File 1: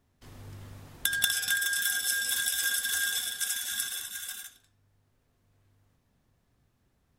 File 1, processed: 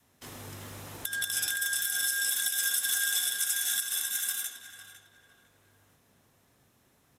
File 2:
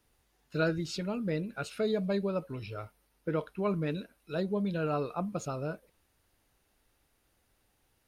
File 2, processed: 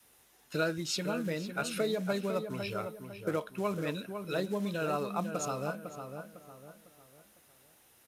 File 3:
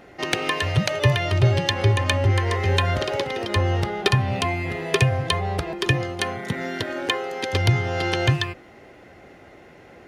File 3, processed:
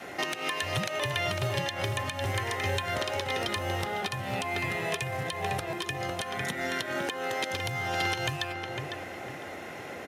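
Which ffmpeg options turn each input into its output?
-filter_complex "[0:a]highshelf=f=6800:g=7.5,acrusher=bits=6:mode=log:mix=0:aa=0.000001,bandreject=f=4600:w=15,acompressor=threshold=0.00891:ratio=2,adynamicequalizer=threshold=0.00224:dfrequency=400:dqfactor=1.7:tfrequency=400:tqfactor=1.7:attack=5:release=100:ratio=0.375:range=2.5:mode=cutabove:tftype=bell,highpass=f=280:p=1,asplit=2[s0][s1];[s1]adelay=503,lowpass=f=2000:p=1,volume=0.447,asplit=2[s2][s3];[s3]adelay=503,lowpass=f=2000:p=1,volume=0.38,asplit=2[s4][s5];[s5]adelay=503,lowpass=f=2000:p=1,volume=0.38,asplit=2[s6][s7];[s7]adelay=503,lowpass=f=2000:p=1,volume=0.38[s8];[s2][s4][s6][s8]amix=inputs=4:normalize=0[s9];[s0][s9]amix=inputs=2:normalize=0,aresample=32000,aresample=44100,alimiter=level_in=1.06:limit=0.0631:level=0:latency=1:release=156,volume=0.944,volume=2.66"

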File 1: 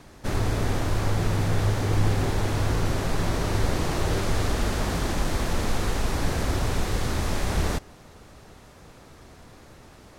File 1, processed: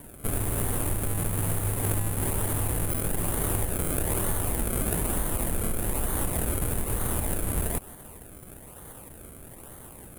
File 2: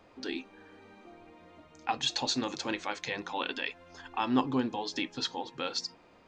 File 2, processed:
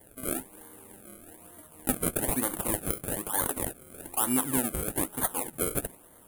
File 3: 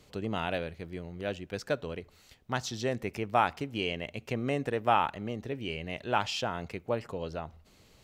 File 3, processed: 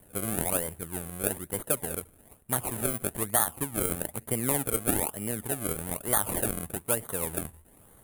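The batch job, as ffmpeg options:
-af "acompressor=threshold=0.0501:ratio=6,acrusher=samples=33:mix=1:aa=0.000001:lfo=1:lforange=33:lforate=1.1,highshelf=f=7500:t=q:w=3:g=13.5,volume=1.19"

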